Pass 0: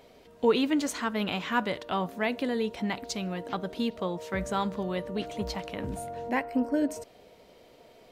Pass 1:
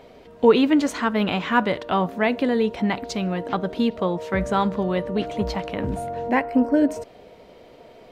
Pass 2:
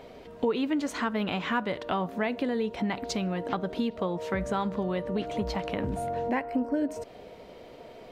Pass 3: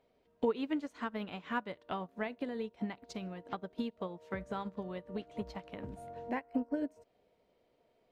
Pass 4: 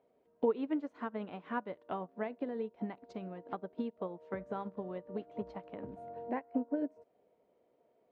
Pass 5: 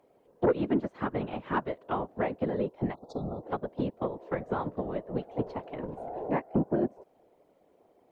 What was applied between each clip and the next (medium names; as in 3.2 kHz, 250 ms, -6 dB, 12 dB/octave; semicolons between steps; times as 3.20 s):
treble shelf 4.3 kHz -11.5 dB; trim +8.5 dB
compression 3:1, threshold -28 dBFS, peak gain reduction 13.5 dB
upward expansion 2.5:1, over -38 dBFS; trim -3 dB
band-pass filter 470 Hz, Q 0.55; trim +1.5 dB
whisper effect; spectral selection erased 2.94–3.43 s, 1.4–3.4 kHz; sine folder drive 4 dB, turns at -17.5 dBFS